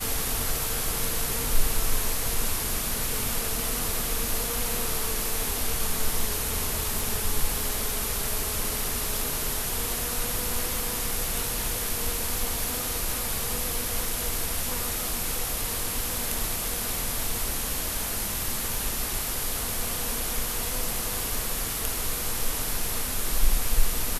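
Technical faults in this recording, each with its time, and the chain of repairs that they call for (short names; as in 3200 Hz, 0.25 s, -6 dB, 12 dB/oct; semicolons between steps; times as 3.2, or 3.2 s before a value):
6.99 pop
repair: de-click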